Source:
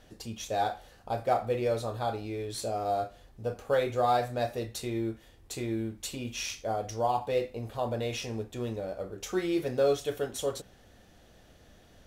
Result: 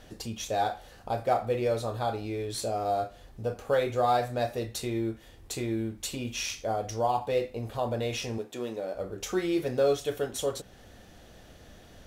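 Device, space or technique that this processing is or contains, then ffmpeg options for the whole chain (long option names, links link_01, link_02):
parallel compression: -filter_complex "[0:a]asplit=2[link_01][link_02];[link_02]acompressor=threshold=-43dB:ratio=6,volume=-1dB[link_03];[link_01][link_03]amix=inputs=2:normalize=0,asettb=1/sr,asplit=3[link_04][link_05][link_06];[link_04]atrim=end=8.384[link_07];[link_05]atrim=start=8.38:end=8.95,asetpts=PTS-STARTPTS,afade=type=in:duration=0.004:curve=qsin,afade=type=out:start_time=0.566:duration=0.004:curve=qsin,highpass=250[link_08];[link_06]atrim=start=8.946[link_09];[link_07][link_08]acrossfade=duration=0.004:curve1=hsin:curve2=qsin[link_10];[link_10][link_09]acrossfade=duration=0.004:curve1=qsin:curve2=hsin"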